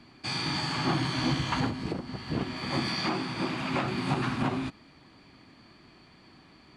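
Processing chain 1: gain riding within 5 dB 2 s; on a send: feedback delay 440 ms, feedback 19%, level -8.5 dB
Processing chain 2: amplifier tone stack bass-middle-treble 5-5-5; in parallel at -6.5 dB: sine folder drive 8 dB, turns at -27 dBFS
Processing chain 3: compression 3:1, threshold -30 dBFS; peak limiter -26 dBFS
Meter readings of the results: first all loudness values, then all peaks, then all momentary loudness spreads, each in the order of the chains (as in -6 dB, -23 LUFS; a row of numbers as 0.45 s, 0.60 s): -29.5 LUFS, -34.0 LUFS, -35.5 LUFS; -15.0 dBFS, -27.5 dBFS, -26.0 dBFS; 8 LU, 10 LU, 21 LU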